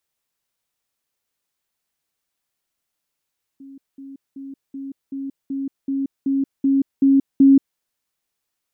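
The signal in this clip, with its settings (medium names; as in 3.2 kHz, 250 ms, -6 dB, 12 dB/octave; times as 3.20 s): level ladder 273 Hz -37.5 dBFS, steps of 3 dB, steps 11, 0.18 s 0.20 s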